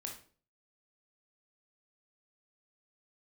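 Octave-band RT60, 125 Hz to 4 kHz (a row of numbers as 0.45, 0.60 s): 0.55, 0.50, 0.50, 0.40, 0.35, 0.35 s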